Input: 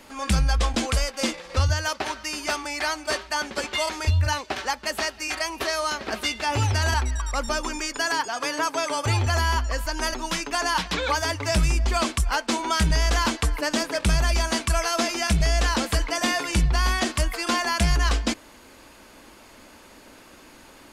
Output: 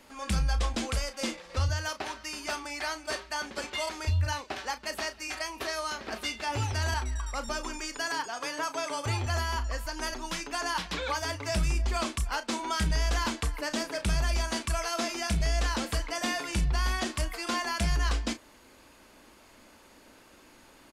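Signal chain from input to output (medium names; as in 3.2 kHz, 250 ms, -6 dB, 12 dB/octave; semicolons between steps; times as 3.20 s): doubling 35 ms -11 dB; trim -7.5 dB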